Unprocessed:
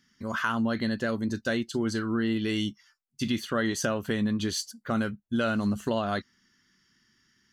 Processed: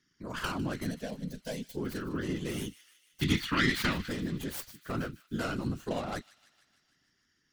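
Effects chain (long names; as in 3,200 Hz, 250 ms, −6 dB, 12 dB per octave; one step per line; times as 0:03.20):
stylus tracing distortion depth 0.44 ms
0:03.21–0:04.09: graphic EQ with 10 bands 125 Hz +10 dB, 250 Hz +6 dB, 500 Hz −11 dB, 1,000 Hz +4 dB, 2,000 Hz +12 dB, 4,000 Hz +10 dB
random phases in short frames
0:00.91–0:01.77: phaser with its sweep stopped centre 340 Hz, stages 6
delay with a high-pass on its return 152 ms, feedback 64%, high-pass 2,300 Hz, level −15.5 dB
level −7 dB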